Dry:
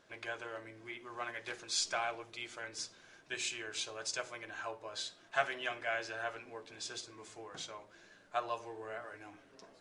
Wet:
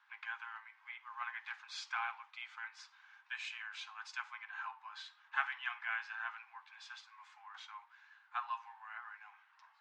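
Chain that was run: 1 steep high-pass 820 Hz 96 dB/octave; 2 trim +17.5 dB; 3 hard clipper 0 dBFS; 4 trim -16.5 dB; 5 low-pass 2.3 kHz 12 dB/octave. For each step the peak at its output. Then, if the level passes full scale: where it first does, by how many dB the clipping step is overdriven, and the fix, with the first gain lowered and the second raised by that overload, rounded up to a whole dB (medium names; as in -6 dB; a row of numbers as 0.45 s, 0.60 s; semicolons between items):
-20.0 dBFS, -2.5 dBFS, -2.5 dBFS, -19.0 dBFS, -21.0 dBFS; nothing clips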